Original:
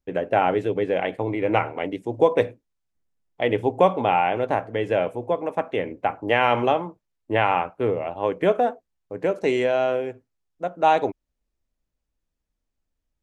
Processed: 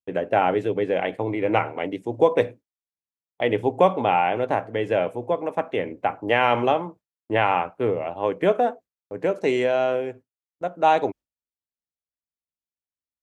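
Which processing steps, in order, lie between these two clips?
noise gate with hold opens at −38 dBFS
high-pass filter 80 Hz

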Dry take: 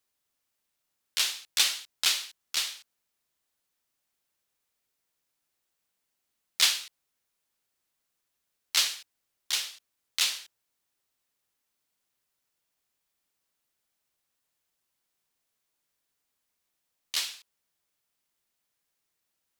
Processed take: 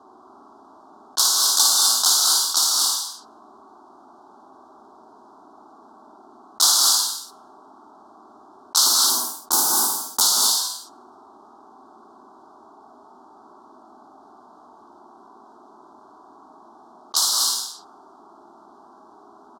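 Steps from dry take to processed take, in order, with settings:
0:08.85–0:10.20: spectral envelope flattened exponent 0.1
Butterworth band-reject 2,400 Hz, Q 0.66
phaser with its sweep stopped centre 520 Hz, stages 6
double-tracking delay 49 ms −9 dB
low-pass that shuts in the quiet parts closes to 890 Hz, open at −35.5 dBFS
high-pass filter 210 Hz 12 dB per octave
parametric band 1,700 Hz +8 dB 2.4 octaves
multi-tap delay 57/122 ms −6.5/−16.5 dB
reverb whose tail is shaped and stops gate 270 ms rising, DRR 0.5 dB
envelope flattener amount 50%
level +8 dB

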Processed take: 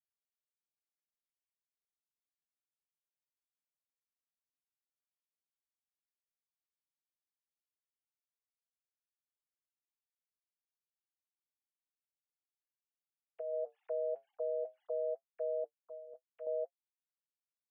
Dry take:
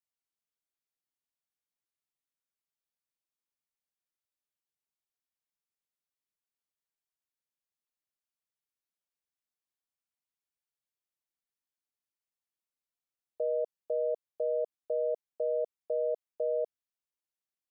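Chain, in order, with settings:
three sine waves on the formant tracks
0:15.64–0:16.47: flat-topped bell 530 Hz −11 dB 1.3 octaves
brickwall limiter −27.5 dBFS, peak gain reduction 4 dB
flanger 0.17 Hz, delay 5.4 ms, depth 3.3 ms, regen −54%
0:13.53–0:15.10: envelope flattener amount 50%
level +1 dB

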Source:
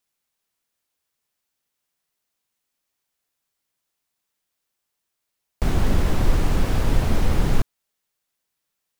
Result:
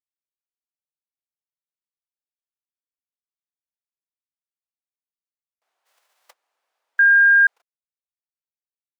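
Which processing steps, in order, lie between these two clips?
0:05.85–0:06.29: spectral envelope flattened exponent 0.6
noise gate −8 dBFS, range −45 dB
high-pass filter 650 Hz 24 dB per octave
0:06.99–0:07.47: beep over 1,610 Hz −9.5 dBFS

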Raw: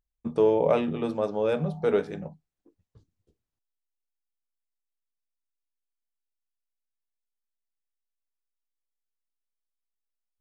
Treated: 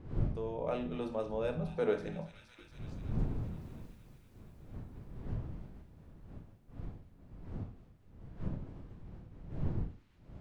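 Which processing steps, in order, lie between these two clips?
fade in at the beginning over 2.32 s
source passing by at 0:03.48, 10 m/s, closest 5.1 metres
wind on the microphone 120 Hz −53 dBFS
speech leveller within 5 dB 0.5 s
parametric band 64 Hz −8.5 dB 0.36 octaves
delay with a high-pass on its return 233 ms, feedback 74%, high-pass 2,200 Hz, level −13 dB
convolution reverb RT60 0.45 s, pre-delay 26 ms, DRR 7.5 dB
one half of a high-frequency compander encoder only
level +9.5 dB

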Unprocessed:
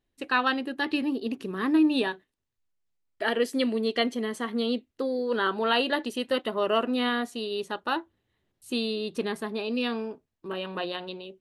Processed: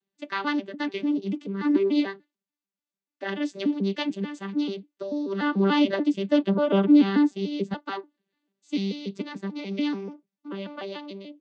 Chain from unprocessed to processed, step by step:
vocoder with an arpeggio as carrier bare fifth, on G3, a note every 146 ms
high-shelf EQ 2,300 Hz +11.5 dB
flanger 0.38 Hz, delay 0.7 ms, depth 4.7 ms, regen −68%
0:05.42–0:07.74: low-shelf EQ 470 Hz +11 dB
level +4 dB

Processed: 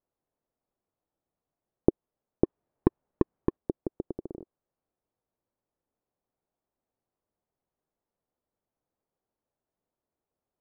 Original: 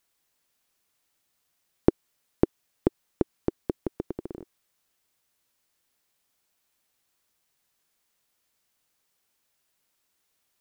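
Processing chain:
0:02.44–0:03.57: each half-wave held at its own peak
Chebyshev low-pass filter 650 Hz, order 2
level −1.5 dB

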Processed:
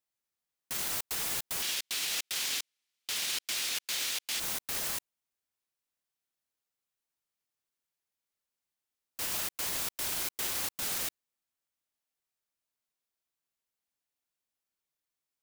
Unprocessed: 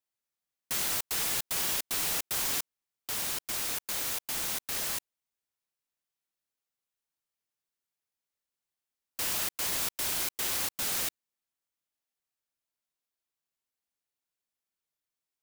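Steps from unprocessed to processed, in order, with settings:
0:01.62–0:04.40: meter weighting curve D
brickwall limiter −23.5 dBFS, peak gain reduction 10.5 dB

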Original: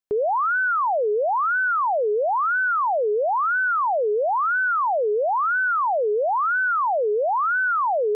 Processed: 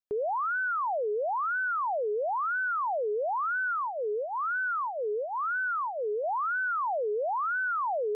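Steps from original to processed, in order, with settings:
0:03.73–0:06.24: parametric band 720 Hz −8.5 dB 0.45 octaves
level −8 dB

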